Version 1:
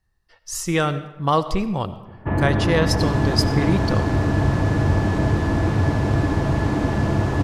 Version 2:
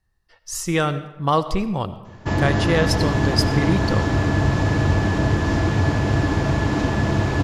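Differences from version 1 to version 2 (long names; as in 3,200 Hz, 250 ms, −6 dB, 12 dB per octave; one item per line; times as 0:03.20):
first sound: remove Bessel low-pass filter 1,600 Hz, order 8
second sound: send −10.5 dB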